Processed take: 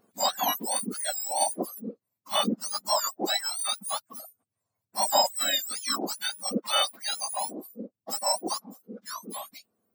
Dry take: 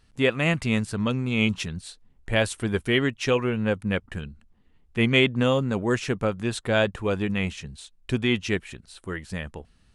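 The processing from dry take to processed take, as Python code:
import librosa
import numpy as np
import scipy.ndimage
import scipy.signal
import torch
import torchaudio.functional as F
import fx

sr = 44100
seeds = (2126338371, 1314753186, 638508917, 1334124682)

y = fx.octave_mirror(x, sr, pivot_hz=1400.0)
y = fx.dereverb_blind(y, sr, rt60_s=1.8)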